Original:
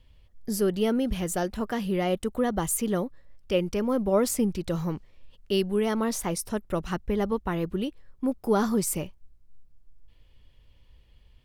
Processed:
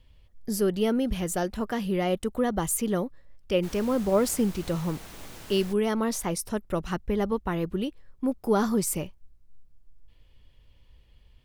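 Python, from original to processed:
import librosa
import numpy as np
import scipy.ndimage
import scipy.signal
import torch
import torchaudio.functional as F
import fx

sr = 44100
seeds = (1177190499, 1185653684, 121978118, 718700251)

y = fx.dmg_noise_colour(x, sr, seeds[0], colour='pink', level_db=-44.0, at=(3.62, 5.72), fade=0.02)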